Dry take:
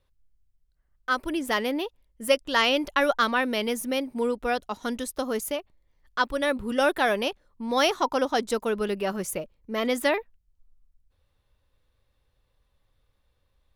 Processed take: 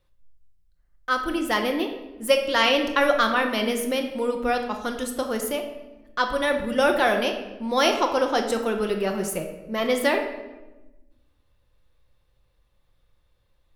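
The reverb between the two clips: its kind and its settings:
rectangular room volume 540 cubic metres, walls mixed, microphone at 0.87 metres
level +1 dB

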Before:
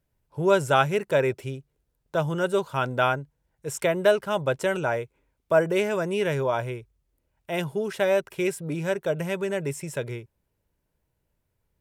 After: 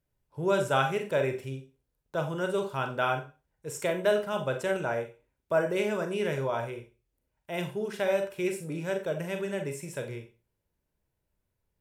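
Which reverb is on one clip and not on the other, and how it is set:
four-comb reverb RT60 0.31 s, combs from 30 ms, DRR 5 dB
level −6 dB

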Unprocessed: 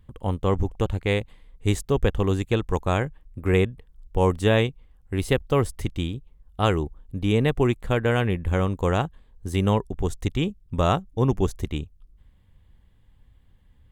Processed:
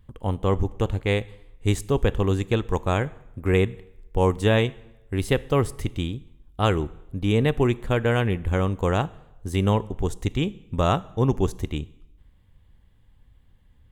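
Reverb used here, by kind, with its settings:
dense smooth reverb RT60 0.89 s, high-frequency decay 0.85×, DRR 18 dB

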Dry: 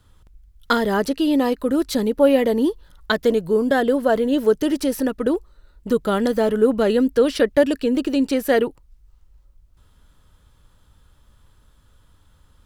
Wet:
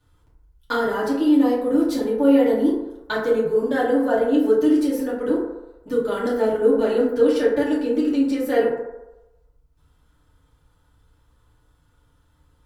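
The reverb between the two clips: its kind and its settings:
feedback delay network reverb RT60 0.97 s, low-frequency decay 0.7×, high-frequency decay 0.35×, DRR −8 dB
level −12 dB

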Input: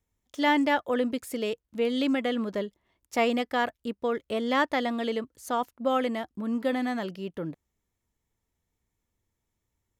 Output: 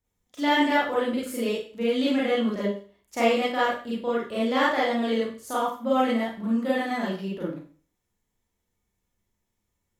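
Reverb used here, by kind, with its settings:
four-comb reverb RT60 0.41 s, combs from 31 ms, DRR −7.5 dB
level −5 dB

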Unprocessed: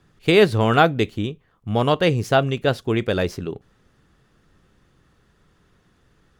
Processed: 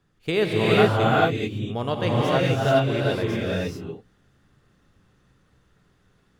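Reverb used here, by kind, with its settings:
reverb whose tail is shaped and stops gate 460 ms rising, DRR −5.5 dB
level −9 dB

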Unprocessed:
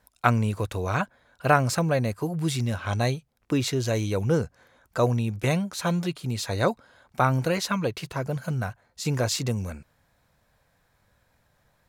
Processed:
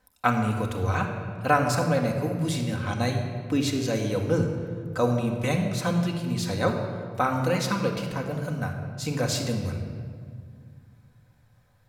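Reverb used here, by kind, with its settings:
rectangular room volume 3,500 cubic metres, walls mixed, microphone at 2 metres
level −3 dB

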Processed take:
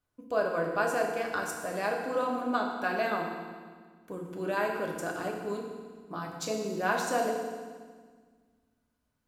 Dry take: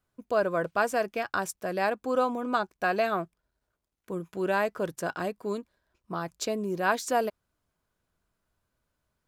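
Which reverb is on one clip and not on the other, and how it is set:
feedback delay network reverb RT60 1.6 s, low-frequency decay 1.45×, high-frequency decay 0.95×, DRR −0.5 dB
level −5 dB

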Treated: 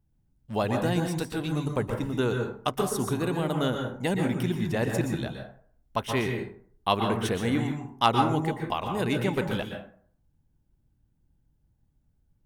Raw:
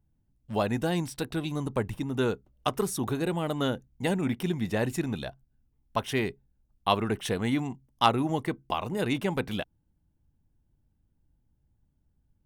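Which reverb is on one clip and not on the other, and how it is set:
dense smooth reverb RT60 0.53 s, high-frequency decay 0.5×, pre-delay 110 ms, DRR 3.5 dB

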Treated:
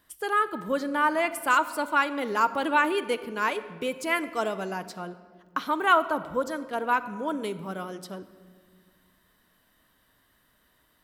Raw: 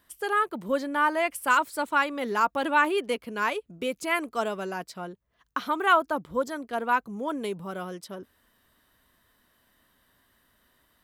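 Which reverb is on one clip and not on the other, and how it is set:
rectangular room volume 2,300 cubic metres, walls mixed, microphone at 0.53 metres

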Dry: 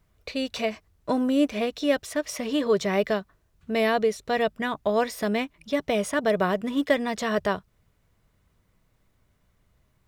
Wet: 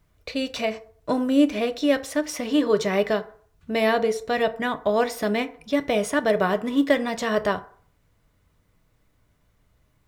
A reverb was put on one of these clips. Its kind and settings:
feedback delay network reverb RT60 0.51 s, low-frequency decay 0.7×, high-frequency decay 0.5×, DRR 9 dB
level +1.5 dB

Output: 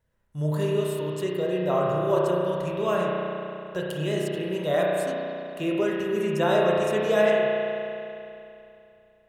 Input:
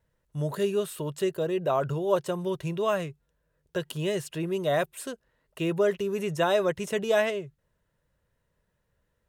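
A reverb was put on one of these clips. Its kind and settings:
spring reverb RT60 2.8 s, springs 33 ms, chirp 70 ms, DRR −3.5 dB
level −2 dB

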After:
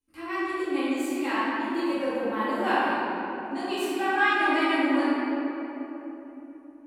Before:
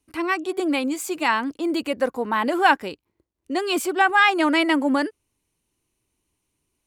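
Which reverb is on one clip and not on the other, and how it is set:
rectangular room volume 210 cubic metres, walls hard, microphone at 2.2 metres
level −18.5 dB

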